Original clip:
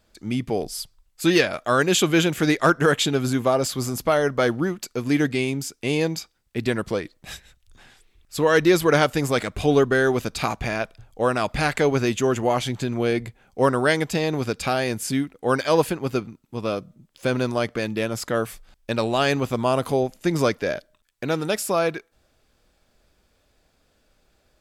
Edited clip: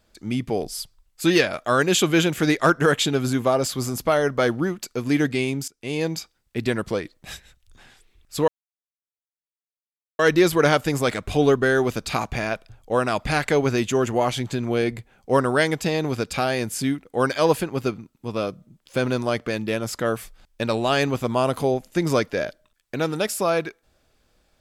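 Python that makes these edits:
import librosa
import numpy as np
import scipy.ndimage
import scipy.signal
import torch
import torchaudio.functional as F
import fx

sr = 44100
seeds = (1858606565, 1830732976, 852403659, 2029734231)

y = fx.edit(x, sr, fx.fade_in_from(start_s=5.68, length_s=0.46, floor_db=-17.5),
    fx.insert_silence(at_s=8.48, length_s=1.71), tone=tone)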